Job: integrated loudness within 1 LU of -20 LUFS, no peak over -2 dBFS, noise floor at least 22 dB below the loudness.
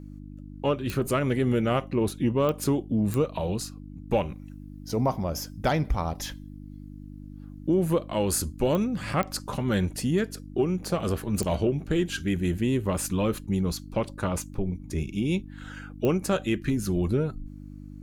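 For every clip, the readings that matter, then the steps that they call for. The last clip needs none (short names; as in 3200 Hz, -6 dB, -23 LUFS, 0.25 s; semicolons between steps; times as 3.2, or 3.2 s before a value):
clicks 7; hum 50 Hz; harmonics up to 300 Hz; hum level -41 dBFS; loudness -27.5 LUFS; peak -12.0 dBFS; loudness target -20.0 LUFS
-> de-click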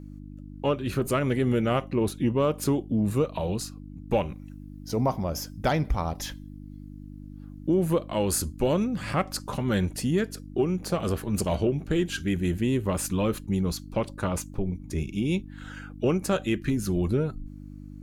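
clicks 0; hum 50 Hz; harmonics up to 300 Hz; hum level -41 dBFS
-> de-hum 50 Hz, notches 6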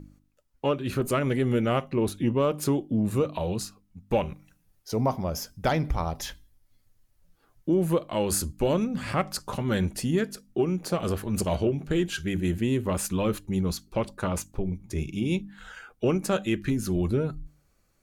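hum none; loudness -28.0 LUFS; peak -13.0 dBFS; loudness target -20.0 LUFS
-> gain +8 dB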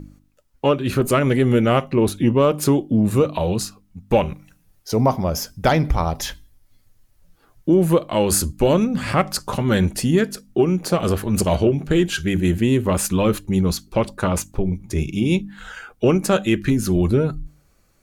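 loudness -20.0 LUFS; peak -5.0 dBFS; noise floor -60 dBFS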